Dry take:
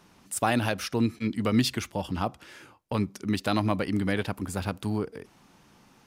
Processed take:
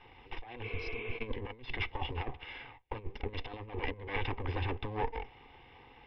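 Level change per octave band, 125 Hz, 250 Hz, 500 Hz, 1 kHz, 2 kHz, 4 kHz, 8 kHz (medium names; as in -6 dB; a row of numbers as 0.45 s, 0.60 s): -9.5 dB, -19.0 dB, -9.0 dB, -8.5 dB, -5.5 dB, -9.5 dB, under -35 dB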